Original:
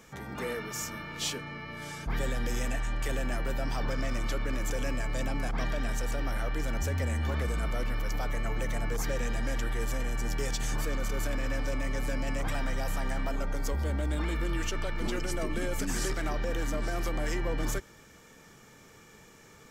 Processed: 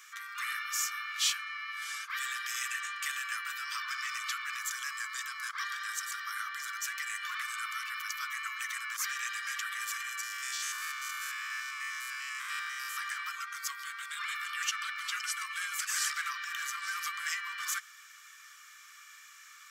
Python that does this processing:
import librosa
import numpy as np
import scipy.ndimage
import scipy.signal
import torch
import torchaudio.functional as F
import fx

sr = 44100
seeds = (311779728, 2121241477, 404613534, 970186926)

y = fx.peak_eq(x, sr, hz=2600.0, db=-9.5, octaves=0.28, at=(4.6, 6.83))
y = fx.spec_steps(y, sr, hold_ms=100, at=(10.23, 12.97))
y = scipy.signal.sosfilt(scipy.signal.butter(16, 1100.0, 'highpass', fs=sr, output='sos'), y)
y = F.gain(torch.from_numpy(y), 4.5).numpy()